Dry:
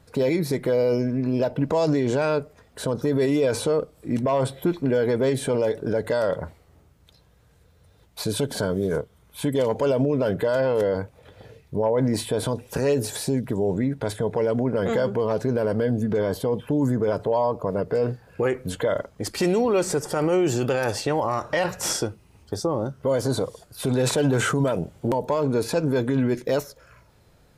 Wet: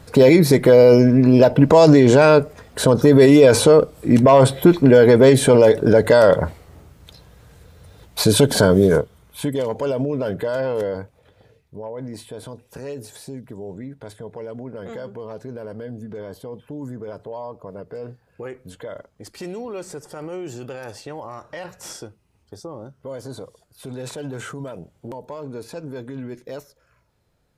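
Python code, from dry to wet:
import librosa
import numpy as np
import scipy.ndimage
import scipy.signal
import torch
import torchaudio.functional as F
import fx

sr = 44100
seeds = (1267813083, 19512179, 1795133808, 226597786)

y = fx.gain(x, sr, db=fx.line((8.81, 11.0), (9.62, -1.0), (10.79, -1.0), (11.76, -10.5)))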